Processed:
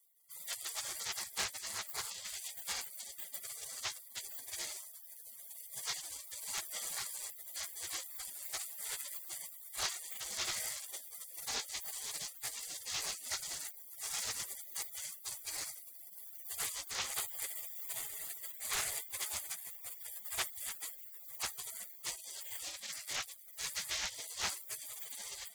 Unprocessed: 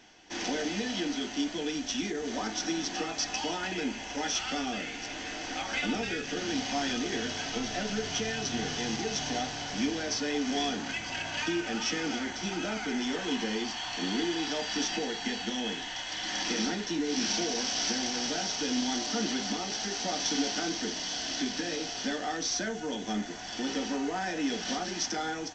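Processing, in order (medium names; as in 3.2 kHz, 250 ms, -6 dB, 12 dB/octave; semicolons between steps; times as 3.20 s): comb filter that takes the minimum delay 0.74 ms; spectral gate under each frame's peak -30 dB weak; loudspeaker Doppler distortion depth 0.39 ms; trim +11.5 dB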